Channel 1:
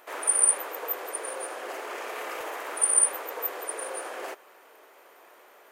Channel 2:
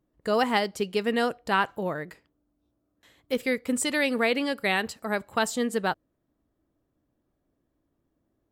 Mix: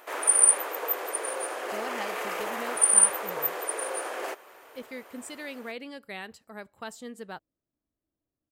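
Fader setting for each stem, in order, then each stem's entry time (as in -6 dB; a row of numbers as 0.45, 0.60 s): +2.5, -14.0 dB; 0.00, 1.45 s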